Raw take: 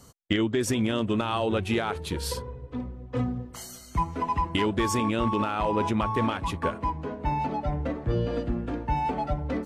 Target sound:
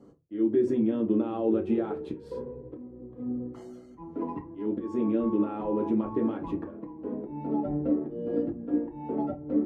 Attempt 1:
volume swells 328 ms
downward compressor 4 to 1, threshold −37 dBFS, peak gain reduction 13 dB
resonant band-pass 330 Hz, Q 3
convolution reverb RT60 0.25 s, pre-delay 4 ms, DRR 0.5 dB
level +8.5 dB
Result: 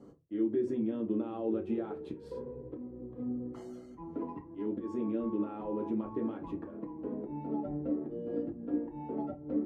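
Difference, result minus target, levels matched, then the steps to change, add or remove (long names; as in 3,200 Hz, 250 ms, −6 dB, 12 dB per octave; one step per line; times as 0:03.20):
downward compressor: peak gain reduction +7 dB
change: downward compressor 4 to 1, threshold −27.5 dBFS, peak gain reduction 6 dB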